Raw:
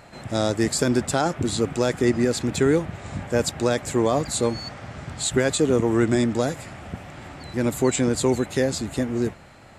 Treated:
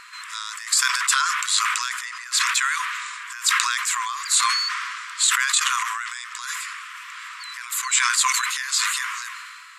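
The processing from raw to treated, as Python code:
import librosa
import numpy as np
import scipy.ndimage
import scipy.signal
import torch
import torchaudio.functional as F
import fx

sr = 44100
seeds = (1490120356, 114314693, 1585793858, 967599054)

y = fx.over_compress(x, sr, threshold_db=-25.0, ratio=-0.5)
y = fx.brickwall_highpass(y, sr, low_hz=970.0)
y = fx.sustainer(y, sr, db_per_s=27.0)
y = y * 10.0 ** (4.5 / 20.0)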